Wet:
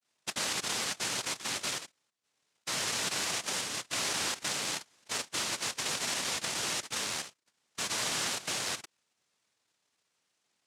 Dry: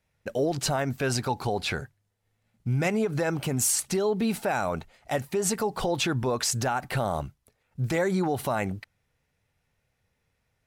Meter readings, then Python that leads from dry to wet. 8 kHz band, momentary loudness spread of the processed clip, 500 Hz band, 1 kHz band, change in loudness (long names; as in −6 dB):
−1.0 dB, 7 LU, −16.0 dB, −8.5 dB, −4.5 dB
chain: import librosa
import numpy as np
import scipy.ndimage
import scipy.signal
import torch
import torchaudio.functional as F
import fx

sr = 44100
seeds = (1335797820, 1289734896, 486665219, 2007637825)

y = fx.vibrato(x, sr, rate_hz=0.33, depth_cents=30.0)
y = fx.level_steps(y, sr, step_db=11)
y = fx.noise_vocoder(y, sr, seeds[0], bands=1)